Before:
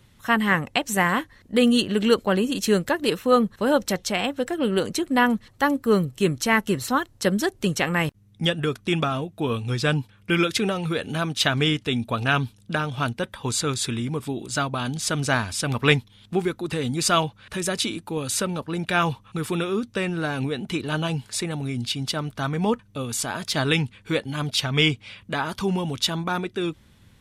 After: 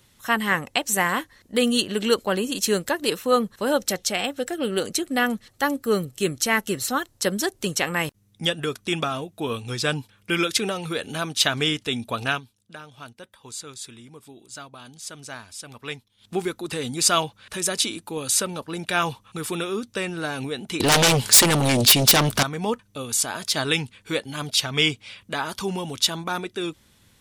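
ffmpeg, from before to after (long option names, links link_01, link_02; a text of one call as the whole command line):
ffmpeg -i in.wav -filter_complex "[0:a]asettb=1/sr,asplit=3[link_01][link_02][link_03];[link_01]atrim=end=3.704[link_04];[link_02]atrim=start=3.7:end=7.02,asetpts=PTS-STARTPTS,afade=type=in:duration=0.004:curve=qsin,afade=type=out:start_time=3.316:duration=0.004:curve=qsin,bandreject=frequency=1000:width=6.5[link_05];[link_03]atrim=start=7.016[link_06];[link_04][link_05]acrossfade=duration=0.004:curve1=hsin:curve2=qsin[link_07];[link_07][link_06]acrossfade=duration=0.004:curve1=qsin:curve2=hsin,asettb=1/sr,asplit=3[link_08][link_09][link_10];[link_08]atrim=end=20.804[link_11];[link_09]atrim=start=20.8:end=22.43,asetpts=PTS-STARTPTS,afade=type=in:duration=0.004:curve=qsin,afade=type=out:start_time=1.626:duration=0.004:curve=qsin,aeval=exprs='0.251*sin(PI/2*5.01*val(0)/0.251)':channel_layout=same[link_12];[link_10]atrim=start=22.426[link_13];[link_11][link_12]acrossfade=duration=0.004:curve1=hsin:curve2=qsin[link_14];[link_14][link_13]acrossfade=duration=0.004:curve1=qsin:curve2=hsin,asplit=3[link_15][link_16][link_17];[link_15]atrim=end=12.41,asetpts=PTS-STARTPTS,afade=type=out:start_time=12.24:duration=0.17:curve=qsin:silence=0.199526[link_18];[link_16]atrim=start=12.41:end=16.17,asetpts=PTS-STARTPTS,volume=-14dB[link_19];[link_17]atrim=start=16.17,asetpts=PTS-STARTPTS,afade=type=in:duration=0.17:curve=qsin:silence=0.199526[link_20];[link_18][link_19][link_20]concat=n=3:v=0:a=1,bass=frequency=250:gain=-6,treble=frequency=4000:gain=7,volume=-1dB" out.wav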